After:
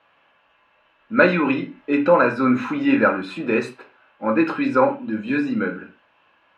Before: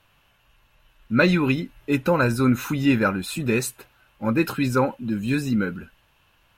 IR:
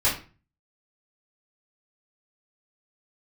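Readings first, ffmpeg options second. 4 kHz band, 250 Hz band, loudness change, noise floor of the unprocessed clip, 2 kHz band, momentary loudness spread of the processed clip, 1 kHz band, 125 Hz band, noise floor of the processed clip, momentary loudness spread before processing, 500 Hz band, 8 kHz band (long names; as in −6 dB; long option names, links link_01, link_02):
−4.0 dB, +1.5 dB, +2.5 dB, −62 dBFS, +3.5 dB, 10 LU, +5.5 dB, −8.0 dB, −61 dBFS, 8 LU, +5.0 dB, below −15 dB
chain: -filter_complex "[0:a]highpass=300,lowpass=2200,asplit=2[link_01][link_02];[1:a]atrim=start_sample=2205,afade=type=out:start_time=0.2:duration=0.01,atrim=end_sample=9261[link_03];[link_02][link_03]afir=irnorm=-1:irlink=0,volume=-15dB[link_04];[link_01][link_04]amix=inputs=2:normalize=0,volume=3dB"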